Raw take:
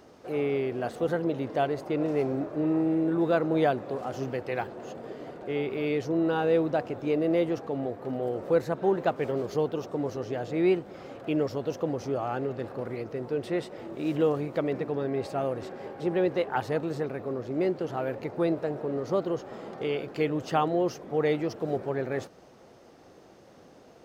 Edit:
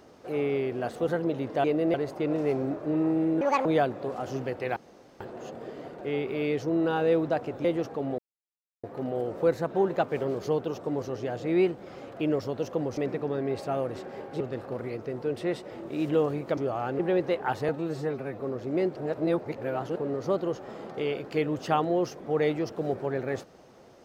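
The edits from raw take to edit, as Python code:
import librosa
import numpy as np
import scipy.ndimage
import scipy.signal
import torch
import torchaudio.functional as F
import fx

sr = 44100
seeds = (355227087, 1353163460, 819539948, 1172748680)

y = fx.edit(x, sr, fx.speed_span(start_s=3.11, length_s=0.41, speed=1.68),
    fx.insert_room_tone(at_s=4.63, length_s=0.44),
    fx.move(start_s=7.07, length_s=0.3, to_s=1.64),
    fx.insert_silence(at_s=7.91, length_s=0.65),
    fx.swap(start_s=12.05, length_s=0.42, other_s=14.64, other_length_s=1.43),
    fx.stretch_span(start_s=16.76, length_s=0.48, factor=1.5),
    fx.reverse_span(start_s=17.8, length_s=1.0), tone=tone)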